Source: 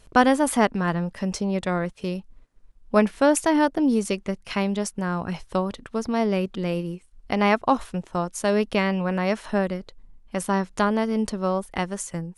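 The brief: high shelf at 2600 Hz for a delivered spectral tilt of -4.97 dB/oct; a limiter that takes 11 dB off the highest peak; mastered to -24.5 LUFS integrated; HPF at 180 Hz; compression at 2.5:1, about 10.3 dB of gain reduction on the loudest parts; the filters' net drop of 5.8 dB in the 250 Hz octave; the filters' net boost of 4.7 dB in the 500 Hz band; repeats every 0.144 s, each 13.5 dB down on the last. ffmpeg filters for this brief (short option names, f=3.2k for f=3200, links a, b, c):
-af "highpass=180,equalizer=f=250:t=o:g=-8,equalizer=f=500:t=o:g=8,highshelf=f=2.6k:g=-4,acompressor=threshold=-26dB:ratio=2.5,alimiter=limit=-20.5dB:level=0:latency=1,aecho=1:1:144|288:0.211|0.0444,volume=7.5dB"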